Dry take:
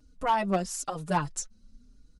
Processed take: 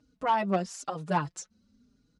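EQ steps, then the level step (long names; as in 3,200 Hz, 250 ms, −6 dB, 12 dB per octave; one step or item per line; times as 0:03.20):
high-pass filter 110 Hz 12 dB per octave
high-frequency loss of the air 81 metres
0.0 dB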